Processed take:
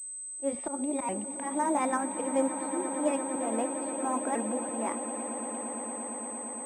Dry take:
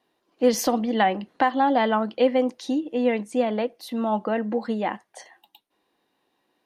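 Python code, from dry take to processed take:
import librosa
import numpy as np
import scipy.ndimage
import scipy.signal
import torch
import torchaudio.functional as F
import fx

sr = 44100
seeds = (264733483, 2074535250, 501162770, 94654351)

y = fx.pitch_ramps(x, sr, semitones=4.0, every_ms=1088)
y = fx.auto_swell(y, sr, attack_ms=118.0)
y = fx.air_absorb(y, sr, metres=350.0)
y = fx.echo_swell(y, sr, ms=115, loudest=8, wet_db=-15.0)
y = fx.pwm(y, sr, carrier_hz=8200.0)
y = y * librosa.db_to_amplitude(-5.0)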